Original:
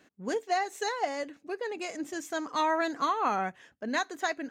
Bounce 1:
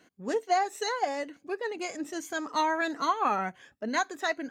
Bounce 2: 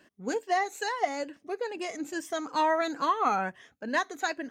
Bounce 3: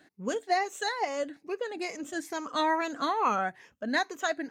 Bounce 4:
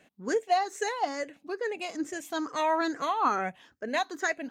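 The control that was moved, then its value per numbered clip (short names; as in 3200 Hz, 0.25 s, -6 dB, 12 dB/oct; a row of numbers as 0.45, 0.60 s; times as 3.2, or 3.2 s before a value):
moving spectral ripple, ripples per octave: 1.9, 1.3, 0.81, 0.5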